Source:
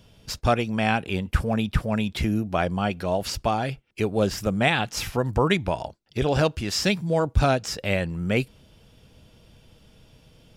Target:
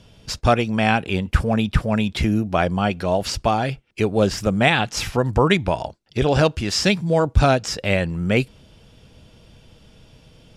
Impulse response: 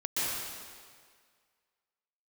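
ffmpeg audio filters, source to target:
-af "lowpass=10000,volume=1.68"

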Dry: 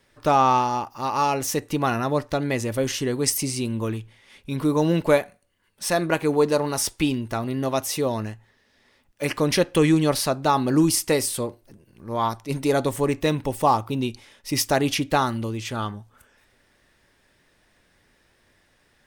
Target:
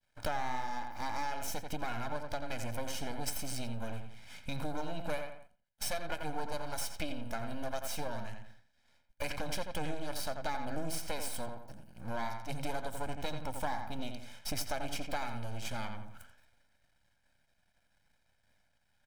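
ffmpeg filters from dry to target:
-filter_complex "[0:a]agate=range=0.0224:threshold=0.00251:ratio=3:detection=peak,aeval=exprs='max(val(0),0)':c=same,aecho=1:1:1.3:0.69,asplit=2[s0][s1];[s1]adelay=86,lowpass=f=3000:p=1,volume=0.447,asplit=2[s2][s3];[s3]adelay=86,lowpass=f=3000:p=1,volume=0.27,asplit=2[s4][s5];[s5]adelay=86,lowpass=f=3000:p=1,volume=0.27[s6];[s2][s4][s6]amix=inputs=3:normalize=0[s7];[s0][s7]amix=inputs=2:normalize=0,acompressor=threshold=0.0158:ratio=4,volume=1.26"

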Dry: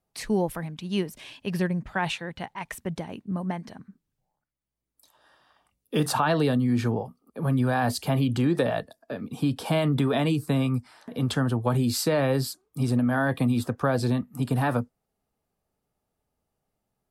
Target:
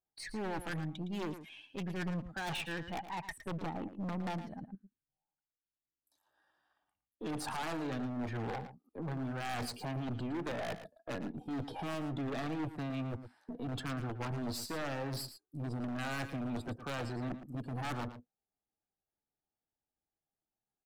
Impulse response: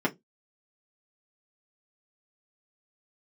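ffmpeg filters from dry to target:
-filter_complex "[0:a]afftdn=nr=18:nf=-37,equalizer=f=315:t=o:w=0.33:g=8,equalizer=f=800:t=o:w=0.33:g=7,equalizer=f=1600:t=o:w=0.33:g=8,areverse,acompressor=threshold=0.0398:ratio=8,areverse,aeval=exprs='0.0944*(cos(1*acos(clip(val(0)/0.0944,-1,1)))-cos(1*PI/2))+0.000596*(cos(2*acos(clip(val(0)/0.0944,-1,1)))-cos(2*PI/2))+0.0015*(cos(5*acos(clip(val(0)/0.0944,-1,1)))-cos(5*PI/2))+0.015*(cos(6*acos(clip(val(0)/0.0944,-1,1)))-cos(6*PI/2))+0.000841*(cos(8*acos(clip(val(0)/0.0944,-1,1)))-cos(8*PI/2))':c=same,atempo=0.82,aeval=exprs='(tanh(17.8*val(0)+0.65)-tanh(0.65))/17.8':c=same,aeval=exprs='0.0188*(abs(mod(val(0)/0.0188+3,4)-2)-1)':c=same,asplit=2[s0][s1];[s1]aecho=0:1:113:0.266[s2];[s0][s2]amix=inputs=2:normalize=0,adynamicequalizer=threshold=0.00158:dfrequency=4500:dqfactor=0.7:tfrequency=4500:tqfactor=0.7:attack=5:release=100:ratio=0.375:range=1.5:mode=cutabove:tftype=highshelf,volume=1.19"

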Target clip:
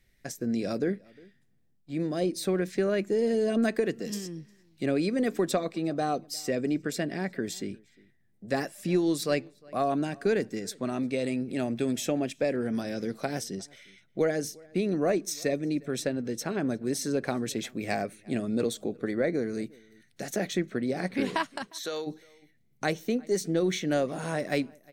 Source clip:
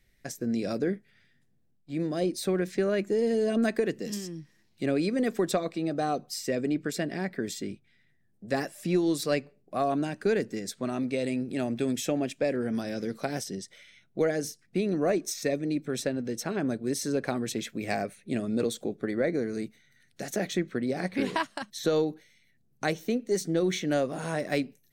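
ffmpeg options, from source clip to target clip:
-filter_complex "[0:a]asplit=3[s0][s1][s2];[s0]afade=t=out:st=21.66:d=0.02[s3];[s1]highpass=f=1300:p=1,afade=t=in:st=21.66:d=0.02,afade=t=out:st=22.06:d=0.02[s4];[s2]afade=t=in:st=22.06:d=0.02[s5];[s3][s4][s5]amix=inputs=3:normalize=0,asplit=2[s6][s7];[s7]adelay=355.7,volume=0.0562,highshelf=f=4000:g=-8[s8];[s6][s8]amix=inputs=2:normalize=0"

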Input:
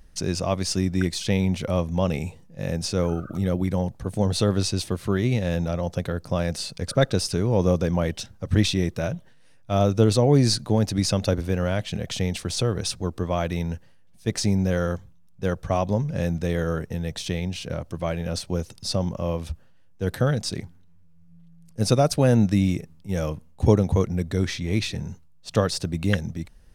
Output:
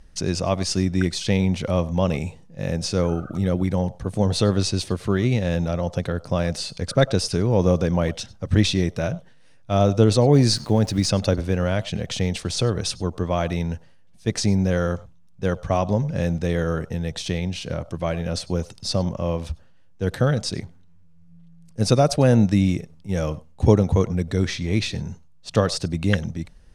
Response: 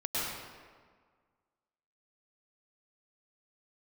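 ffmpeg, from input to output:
-filter_complex "[0:a]lowpass=9100,asettb=1/sr,asplit=3[s0][s1][s2];[s0]atrim=end=10.324[s3];[s1]atrim=start=10.32:end=11.1,asetpts=PTS-STARTPTS,afade=t=in:d=0.004:c=qsin,afade=t=out:st=0.776:d=0.004:c=qsin,aeval=exprs='val(0)*gte(abs(val(0)),0.00794)':c=same[s4];[s2]atrim=start=11.096[s5];[s3][s4]acrossfade=d=0.004:c1=hsin:c2=qsin[s6];[s6][s5]acrossfade=d=0.004:c1=qsin:c2=hsin[s7];[1:a]atrim=start_sample=2205,afade=t=out:st=0.14:d=0.01,atrim=end_sample=6615[s8];[s7][s8]afir=irnorm=-1:irlink=0,volume=1.68"

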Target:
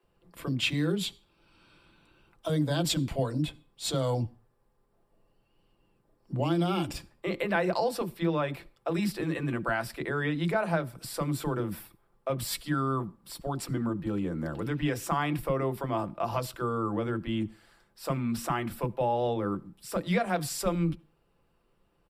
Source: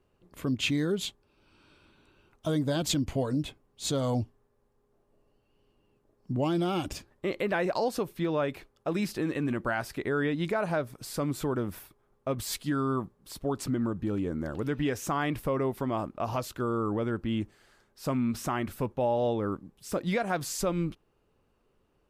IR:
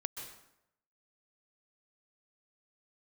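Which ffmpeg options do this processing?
-filter_complex "[0:a]bandreject=f=6400:w=5.6,aecho=1:1:5.9:0.37,acrossover=split=350[s0][s1];[s0]adelay=30[s2];[s2][s1]amix=inputs=2:normalize=0,asplit=2[s3][s4];[1:a]atrim=start_sample=2205,asetrate=83790,aresample=44100[s5];[s4][s5]afir=irnorm=-1:irlink=0,volume=0.211[s6];[s3][s6]amix=inputs=2:normalize=0"

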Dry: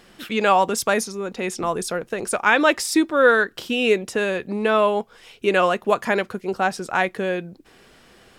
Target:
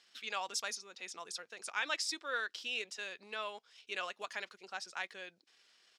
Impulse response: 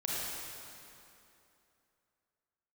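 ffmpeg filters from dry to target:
-af "bandpass=f=5300:t=q:w=1.5:csg=0,atempo=1.4,highshelf=f=5300:g=-9,volume=0.708"

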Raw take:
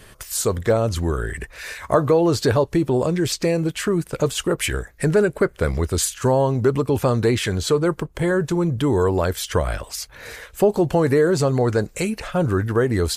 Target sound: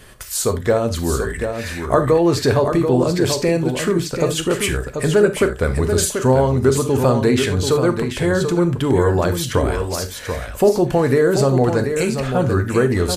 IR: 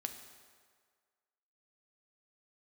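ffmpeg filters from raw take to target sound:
-filter_complex "[0:a]aecho=1:1:736:0.447[s0];[1:a]atrim=start_sample=2205,atrim=end_sample=3969[s1];[s0][s1]afir=irnorm=-1:irlink=0,volume=1.58"

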